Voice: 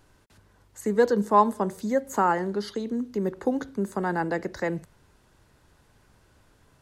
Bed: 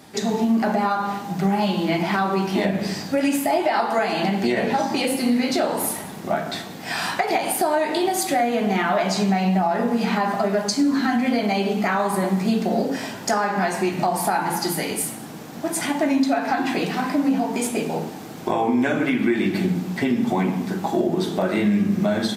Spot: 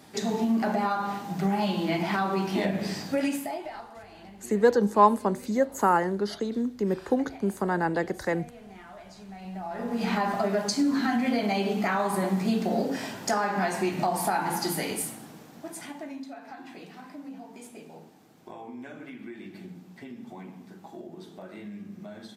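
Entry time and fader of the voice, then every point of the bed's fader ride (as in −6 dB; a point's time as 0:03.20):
3.65 s, +0.5 dB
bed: 0:03.22 −5.5 dB
0:03.99 −26 dB
0:09.23 −26 dB
0:10.08 −5 dB
0:14.90 −5 dB
0:16.32 −21.5 dB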